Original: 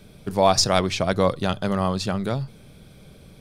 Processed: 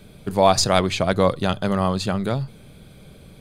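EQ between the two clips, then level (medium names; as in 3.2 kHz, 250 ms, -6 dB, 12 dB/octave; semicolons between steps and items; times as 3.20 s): band-stop 5.5 kHz, Q 5.7; +2.0 dB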